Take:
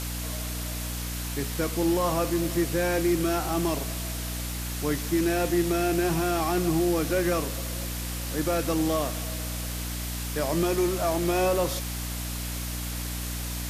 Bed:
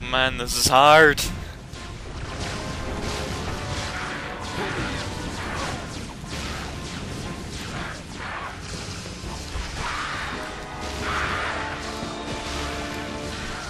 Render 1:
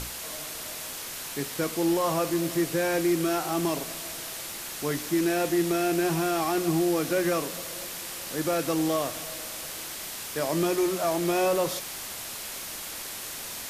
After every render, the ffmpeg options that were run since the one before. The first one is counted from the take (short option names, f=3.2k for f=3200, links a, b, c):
-af "bandreject=f=60:t=h:w=6,bandreject=f=120:t=h:w=6,bandreject=f=180:t=h:w=6,bandreject=f=240:t=h:w=6,bandreject=f=300:t=h:w=6"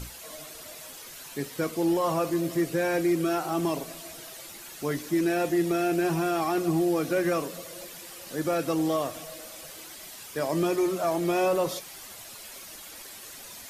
-af "afftdn=nr=10:nf=-38"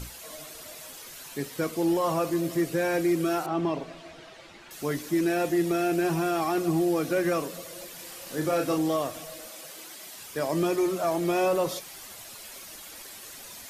-filter_complex "[0:a]asettb=1/sr,asplit=3[a][b][c];[a]atrim=end=3.464[d];[b]atrim=start=3.46:end=4.71,asetpts=PTS-STARTPTS,afade=t=in:d=0.004:c=qsin,afade=t=out:st=1.246:d=0.004:c=qsin,lowpass=3.2k[e];[c]atrim=start=4.706[f];[d][e]acrossfade=d=0.004:c1=hsin:c2=qsin[g];[g][f]acrossfade=d=0.004:c1=qsin:c2=hsin,asettb=1/sr,asplit=3[h][i][j];[h]atrim=end=7.954[k];[i]atrim=start=7.95:end=8.78,asetpts=PTS-STARTPTS,afade=t=in:d=0.004:c=qsin,afade=t=out:st=0.826:d=0.004:c=qsin,asplit=2[l][m];[m]adelay=33,volume=-5dB[n];[l][n]amix=inputs=2:normalize=0,atrim=end_sample=36603[o];[j]atrim=start=8.776[p];[k][o]acrossfade=d=0.004:c1=hsin:c2=qsin[q];[q][p]acrossfade=d=0.004:c1=qsin:c2=hsin,asettb=1/sr,asplit=3[r][s][t];[r]atrim=end=9.484[u];[s]atrim=start=9.48:end=10.16,asetpts=PTS-STARTPTS,afade=t=in:d=0.004:c=qsin,afade=t=out:st=0.676:d=0.004:c=qsin,highpass=180[v];[t]atrim=start=10.156[w];[u][v]acrossfade=d=0.004:c1=hsin:c2=qsin[x];[x][w]acrossfade=d=0.004:c1=qsin:c2=hsin"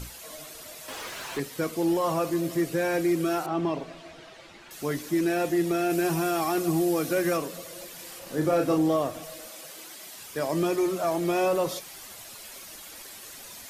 -filter_complex "[0:a]asettb=1/sr,asplit=3[a][b][c];[a]atrim=end=0.884[d];[b]atrim=start=0.88:end=1.4,asetpts=PTS-STARTPTS,afade=t=in:d=0.004:c=qsin,afade=t=out:st=0.516:d=0.004:c=qsin,asplit=2[e][f];[f]highpass=f=720:p=1,volume=27dB,asoftclip=type=tanh:threshold=-19.5dB[g];[e][g]amix=inputs=2:normalize=0,lowpass=f=1.4k:p=1,volume=-6dB[h];[c]atrim=start=1.396[i];[d][h]acrossfade=d=0.004:c1=hsin:c2=qsin[j];[j][i]acrossfade=d=0.004:c1=qsin:c2=hsin,asettb=1/sr,asplit=3[k][l][m];[k]atrim=end=5.904[n];[l]atrim=start=5.9:end=7.37,asetpts=PTS-STARTPTS,afade=t=in:d=0.004:c=qsin,afade=t=out:st=1.466:d=0.004:c=qsin,highshelf=f=5.9k:g=7[o];[m]atrim=start=7.366[p];[n][o]acrossfade=d=0.004:c1=hsin:c2=qsin[q];[q][p]acrossfade=d=0.004:c1=qsin:c2=hsin,asettb=1/sr,asplit=3[r][s][t];[r]atrim=end=8.194[u];[s]atrim=start=8.19:end=9.23,asetpts=PTS-STARTPTS,afade=t=in:d=0.004:c=qsin,afade=t=out:st=1.036:d=0.004:c=qsin,tiltshelf=f=1.4k:g=3.5[v];[t]atrim=start=9.226[w];[u][v]acrossfade=d=0.004:c1=hsin:c2=qsin[x];[x][w]acrossfade=d=0.004:c1=qsin:c2=hsin"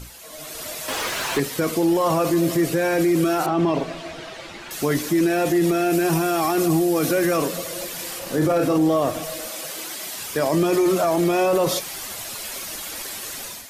-af "dynaudnorm=f=320:g=3:m=11.5dB,alimiter=limit=-12dB:level=0:latency=1:release=18"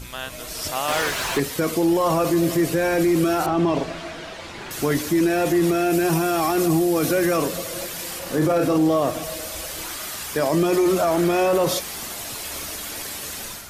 -filter_complex "[1:a]volume=-12dB[a];[0:a][a]amix=inputs=2:normalize=0"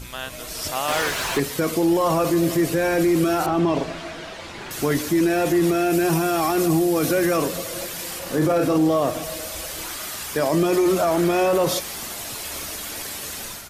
-af "aecho=1:1:131:0.0708"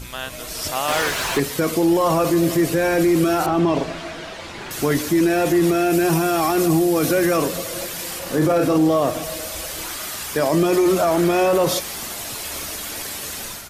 -af "volume=2dB"